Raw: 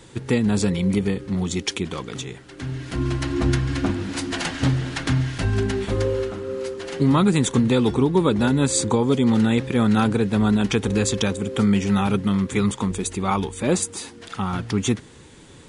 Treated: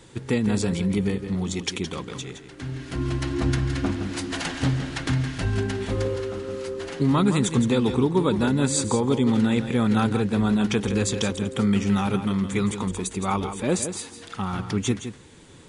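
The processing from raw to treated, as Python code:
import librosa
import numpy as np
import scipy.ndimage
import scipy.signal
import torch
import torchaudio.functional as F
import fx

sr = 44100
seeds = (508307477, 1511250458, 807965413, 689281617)

y = x + 10.0 ** (-9.5 / 20.0) * np.pad(x, (int(166 * sr / 1000.0), 0))[:len(x)]
y = fx.band_squash(y, sr, depth_pct=70, at=(6.16, 6.93))
y = y * 10.0 ** (-3.0 / 20.0)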